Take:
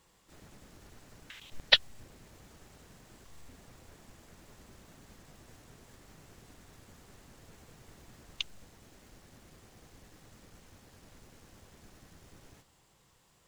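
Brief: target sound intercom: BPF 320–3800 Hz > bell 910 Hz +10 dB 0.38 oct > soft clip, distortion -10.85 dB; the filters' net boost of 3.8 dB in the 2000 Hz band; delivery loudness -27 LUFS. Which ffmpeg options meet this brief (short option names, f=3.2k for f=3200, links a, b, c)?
-af "highpass=320,lowpass=3.8k,equalizer=f=910:t=o:w=0.38:g=10,equalizer=f=2k:t=o:g=4.5,asoftclip=threshold=-12.5dB,volume=5.5dB"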